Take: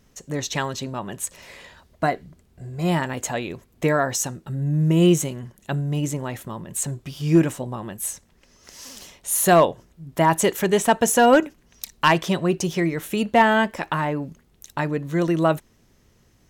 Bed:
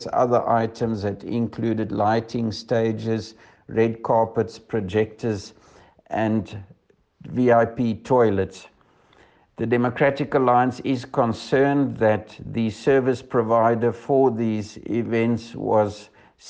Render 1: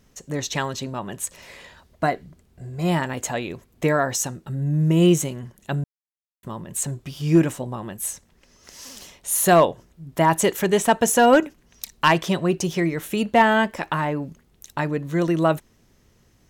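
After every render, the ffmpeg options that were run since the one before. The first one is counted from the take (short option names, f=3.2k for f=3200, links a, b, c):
-filter_complex "[0:a]asplit=3[a][b][c];[a]atrim=end=5.84,asetpts=PTS-STARTPTS,afade=t=out:st=5.836:d=0.004:c=hsin[d];[b]atrim=start=5.84:end=6.43,asetpts=PTS-STARTPTS,volume=0[e];[c]atrim=start=6.43,asetpts=PTS-STARTPTS,afade=t=in:d=0.004:c=hsin[f];[d][e][f]concat=n=3:v=0:a=1"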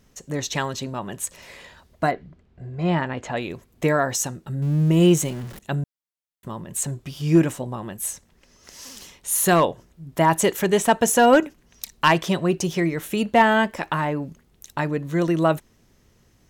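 -filter_complex "[0:a]asettb=1/sr,asplit=3[a][b][c];[a]atrim=end=2.114[d];[b]atrim=start=2.11:end=3.37,asetpts=PTS-STARTPTS,afade=t=in:d=0.004:c=qsin,afade=t=out:st=1.256:d=0.004:c=qsin,lowpass=3.2k[e];[c]atrim=start=3.366[f];[d][e]acrossfade=d=0.004:c1=hsin:c2=qsin[g];[g][f]acrossfade=d=0.004:c1=qsin:c2=hsin,asettb=1/sr,asplit=3[h][i][j];[h]atrim=end=4.624[k];[i]atrim=start=4.62:end=5.59,asetpts=PTS-STARTPTS,afade=t=in:d=0.004:c=qsin,afade=t=out:st=0.966:d=0.004:c=qsin,aeval=exprs='val(0)+0.5*0.0178*sgn(val(0))':c=same[l];[j]atrim=start=5.586[m];[k][l]acrossfade=d=0.004:c1=hsin:c2=qsin[n];[n][m]acrossfade=d=0.004:c1=qsin:c2=hsin,asettb=1/sr,asplit=3[o][p][q];[o]atrim=end=8.904[r];[p]atrim=start=8.9:end=9.64,asetpts=PTS-STARTPTS,afade=t=in:d=0.004:c=qsin,afade=t=out:st=0.736:d=0.004:c=qsin,equalizer=f=640:t=o:w=0.38:g=-7[s];[q]atrim=start=9.636[t];[r][s]acrossfade=d=0.004:c1=hsin:c2=qsin[u];[u][t]acrossfade=d=0.004:c1=qsin:c2=hsin"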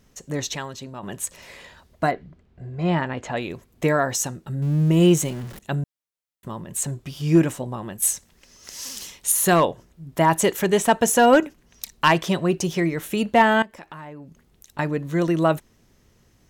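-filter_complex "[0:a]asettb=1/sr,asplit=3[a][b][c];[a]atrim=end=8.024[d];[b]atrim=start=8.02:end=9.32,asetpts=PTS-STARTPTS,afade=t=in:d=0.004:c=qsin,afade=t=out:st=1.296:d=0.004:c=qsin,highshelf=f=2.5k:g=8[e];[c]atrim=start=9.316[f];[d][e]acrossfade=d=0.004:c1=hsin:c2=qsin[g];[g][f]acrossfade=d=0.004:c1=qsin:c2=hsin,asettb=1/sr,asplit=3[h][i][j];[h]atrim=end=13.624[k];[i]atrim=start=13.62:end=14.79,asetpts=PTS-STARTPTS,afade=t=in:d=0.004:c=qsin,afade=t=out:st=1.166:d=0.004:c=qsin,acompressor=threshold=-48dB:ratio=2:attack=3.2:release=140:knee=1:detection=peak[l];[j]atrim=start=14.786[m];[k][l]acrossfade=d=0.004:c1=hsin:c2=qsin[n];[n][m]acrossfade=d=0.004:c1=qsin:c2=hsin,asplit=3[o][p][q];[o]atrim=end=0.552[r];[p]atrim=start=0.548:end=1.032,asetpts=PTS-STARTPTS,volume=-6.5dB[s];[q]atrim=start=1.028[t];[r][s]acrossfade=d=0.004:c1=hsin:c2=hsin[u];[u][t]acrossfade=d=0.004:c1=hsin:c2=hsin"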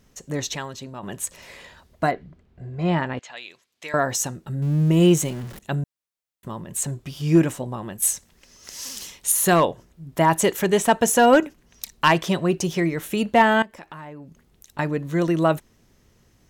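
-filter_complex "[0:a]asettb=1/sr,asplit=3[a][b][c];[a]atrim=end=3.194[d];[b]atrim=start=3.19:end=3.94,asetpts=PTS-STARTPTS,afade=t=in:d=0.004:c=qsin,afade=t=out:st=0.746:d=0.004:c=qsin,bandpass=f=4.1k:t=q:w=1[e];[c]atrim=start=3.936[f];[d][e]acrossfade=d=0.004:c1=hsin:c2=qsin[g];[g][f]acrossfade=d=0.004:c1=qsin:c2=hsin"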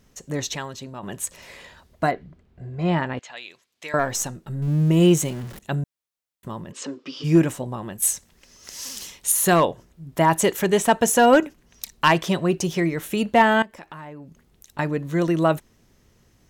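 -filter_complex "[0:a]asettb=1/sr,asplit=3[a][b][c];[a]atrim=end=3.994[d];[b]atrim=start=3.99:end=4.68,asetpts=PTS-STARTPTS,afade=t=in:d=0.004:c=qsin,afade=t=out:st=0.686:d=0.004:c=qsin,aeval=exprs='if(lt(val(0),0),0.708*val(0),val(0))':c=same[e];[c]atrim=start=4.676[f];[d][e]acrossfade=d=0.004:c1=hsin:c2=qsin[g];[g][f]acrossfade=d=0.004:c1=qsin:c2=hsin,asplit=3[h][i][j];[h]afade=t=out:st=6.71:d=0.02[k];[i]highpass=f=260:w=0.5412,highpass=f=260:w=1.3066,equalizer=f=270:t=q:w=4:g=9,equalizer=f=490:t=q:w=4:g=8,equalizer=f=710:t=q:w=4:g=-7,equalizer=f=1.2k:t=q:w=4:g=7,equalizer=f=2.9k:t=q:w=4:g=5,equalizer=f=5.1k:t=q:w=4:g=7,lowpass=f=5.5k:w=0.5412,lowpass=f=5.5k:w=1.3066,afade=t=in:st=6.71:d=0.02,afade=t=out:st=7.23:d=0.02[l];[j]afade=t=in:st=7.23:d=0.02[m];[k][l][m]amix=inputs=3:normalize=0"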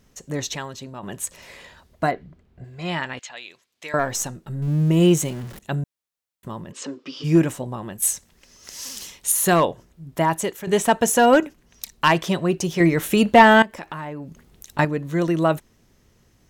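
-filter_complex "[0:a]asettb=1/sr,asplit=3[a][b][c];[a]atrim=end=2.644[d];[b]atrim=start=2.64:end=3.29,asetpts=PTS-STARTPTS,afade=t=in:d=0.004:c=qsin,afade=t=out:st=0.646:d=0.004:c=qsin,tiltshelf=f=1.4k:g=-8[e];[c]atrim=start=3.286[f];[d][e]acrossfade=d=0.004:c1=hsin:c2=qsin[g];[g][f]acrossfade=d=0.004:c1=qsin:c2=hsin,asettb=1/sr,asplit=3[h][i][j];[h]atrim=end=12.804[k];[i]atrim=start=12.8:end=14.85,asetpts=PTS-STARTPTS,afade=t=in:d=0.004:c=qsin,afade=t=out:st=2.046:d=0.004:c=qsin,acontrast=63[l];[j]atrim=start=14.846[m];[k][l]acrossfade=d=0.004:c1=hsin:c2=qsin[n];[n][m]acrossfade=d=0.004:c1=qsin:c2=hsin,asplit=2[o][p];[o]atrim=end=10.67,asetpts=PTS-STARTPTS,afade=t=out:st=10.08:d=0.59:silence=0.237137[q];[p]atrim=start=10.67,asetpts=PTS-STARTPTS,afade=t=in:d=0.004:c=hsin:silence=0.237137[r];[q][r]concat=n=2:v=0:a=1"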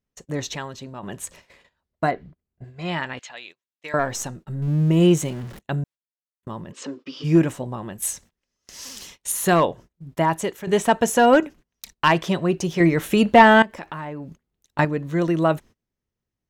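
-af "agate=range=-26dB:threshold=-41dB:ratio=16:detection=peak,highshelf=f=6.3k:g=-7.5"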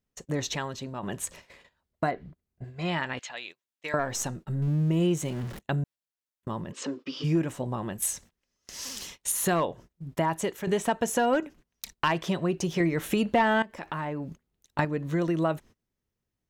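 -af "acompressor=threshold=-26dB:ratio=2.5"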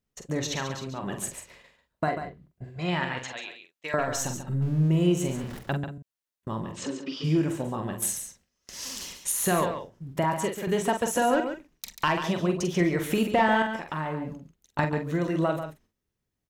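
-filter_complex "[0:a]asplit=2[a][b];[b]adelay=45,volume=-7dB[c];[a][c]amix=inputs=2:normalize=0,aecho=1:1:140:0.355"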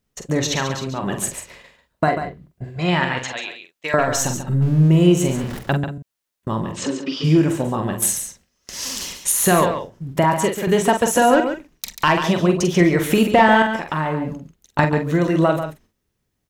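-af "volume=9dB,alimiter=limit=-3dB:level=0:latency=1"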